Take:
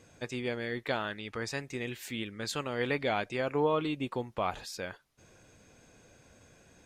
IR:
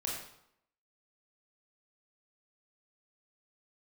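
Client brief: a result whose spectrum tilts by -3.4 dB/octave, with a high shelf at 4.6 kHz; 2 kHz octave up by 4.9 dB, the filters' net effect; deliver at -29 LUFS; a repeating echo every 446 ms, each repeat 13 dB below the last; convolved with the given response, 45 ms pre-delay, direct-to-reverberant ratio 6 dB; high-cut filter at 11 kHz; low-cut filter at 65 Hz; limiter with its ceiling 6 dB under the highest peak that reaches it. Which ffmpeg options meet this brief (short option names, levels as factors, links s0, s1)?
-filter_complex "[0:a]highpass=65,lowpass=11000,equalizer=f=2000:t=o:g=7.5,highshelf=f=4600:g=-8.5,alimiter=limit=0.0944:level=0:latency=1,aecho=1:1:446|892|1338:0.224|0.0493|0.0108,asplit=2[s0][s1];[1:a]atrim=start_sample=2205,adelay=45[s2];[s1][s2]afir=irnorm=-1:irlink=0,volume=0.376[s3];[s0][s3]amix=inputs=2:normalize=0,volume=1.58"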